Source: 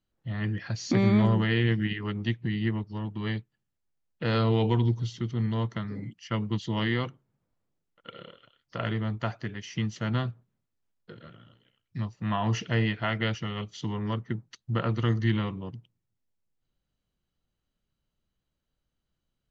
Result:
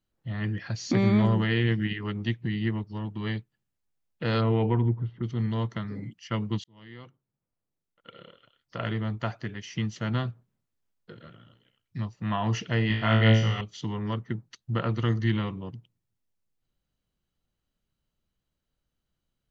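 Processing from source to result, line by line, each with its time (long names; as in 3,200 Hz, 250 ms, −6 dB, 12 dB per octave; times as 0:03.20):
0:04.40–0:05.22: low-pass filter 2,800 Hz → 1,700 Hz 24 dB per octave
0:06.64–0:08.98: fade in
0:12.88–0:13.61: flutter between parallel walls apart 3.1 metres, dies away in 0.58 s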